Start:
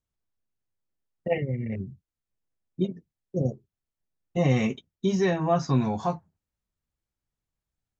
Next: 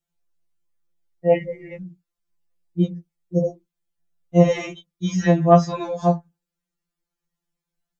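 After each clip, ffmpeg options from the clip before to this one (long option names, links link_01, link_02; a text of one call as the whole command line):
ffmpeg -i in.wav -af "afftfilt=real='re*2.83*eq(mod(b,8),0)':imag='im*2.83*eq(mod(b,8),0)':win_size=2048:overlap=0.75,volume=6dB" out.wav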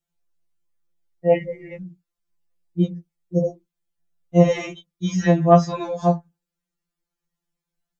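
ffmpeg -i in.wav -af anull out.wav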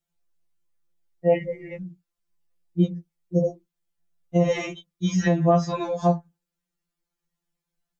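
ffmpeg -i in.wav -af "alimiter=limit=-10dB:level=0:latency=1:release=150" out.wav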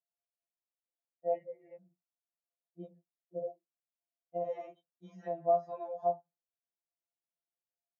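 ffmpeg -i in.wav -af "bandpass=frequency=650:width_type=q:width=5.8:csg=0,volume=-4.5dB" out.wav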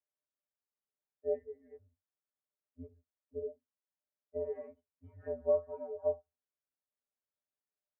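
ffmpeg -i in.wav -af "highpass=frequency=150:width_type=q:width=0.5412,highpass=frequency=150:width_type=q:width=1.307,lowpass=frequency=2000:width_type=q:width=0.5176,lowpass=frequency=2000:width_type=q:width=0.7071,lowpass=frequency=2000:width_type=q:width=1.932,afreqshift=-89,volume=-1.5dB" out.wav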